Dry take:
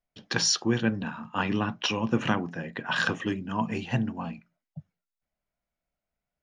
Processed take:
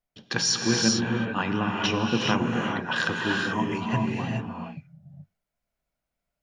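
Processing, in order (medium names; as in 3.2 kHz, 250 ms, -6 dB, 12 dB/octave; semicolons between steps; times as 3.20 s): gated-style reverb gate 460 ms rising, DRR 0 dB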